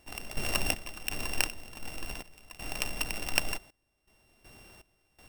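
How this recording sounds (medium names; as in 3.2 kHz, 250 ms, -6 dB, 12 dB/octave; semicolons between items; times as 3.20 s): a buzz of ramps at a fixed pitch in blocks of 16 samples; random-step tremolo 2.7 Hz, depth 95%; Vorbis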